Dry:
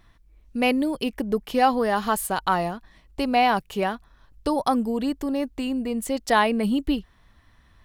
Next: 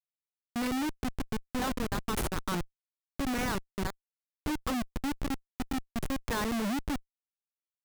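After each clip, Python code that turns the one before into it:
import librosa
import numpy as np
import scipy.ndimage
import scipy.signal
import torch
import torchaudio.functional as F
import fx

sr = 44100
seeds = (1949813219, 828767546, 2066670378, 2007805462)

y = fx.dereverb_blind(x, sr, rt60_s=1.1)
y = fx.fixed_phaser(y, sr, hz=1600.0, stages=4)
y = fx.schmitt(y, sr, flips_db=-26.5)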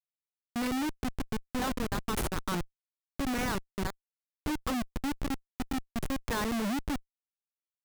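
y = x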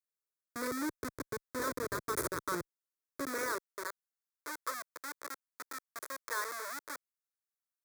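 y = fx.filter_sweep_highpass(x, sr, from_hz=150.0, to_hz=800.0, start_s=2.98, end_s=4.01, q=0.77)
y = fx.fixed_phaser(y, sr, hz=780.0, stages=6)
y = y * 10.0 ** (1.0 / 20.0)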